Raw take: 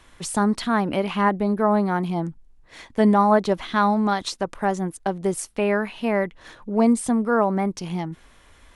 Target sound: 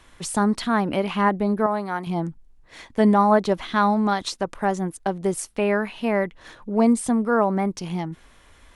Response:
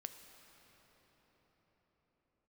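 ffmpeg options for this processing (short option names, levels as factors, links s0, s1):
-filter_complex "[0:a]asettb=1/sr,asplit=3[s0][s1][s2];[s0]atrim=end=1.664[s3];[s1]atrim=start=1.66:end=2.07,asetpts=PTS-STARTPTS,afade=t=in:d=0.004:c=qsin,afade=t=out:st=0.406:d=0.004:c=qsin,lowshelf=f=430:g=-12[s4];[s2]atrim=start=2.066[s5];[s3][s4]acrossfade=d=0.004:c1=hsin:c2=qsin[s6];[s6][s5]acrossfade=d=0.004:c1=qsin:c2=hsin"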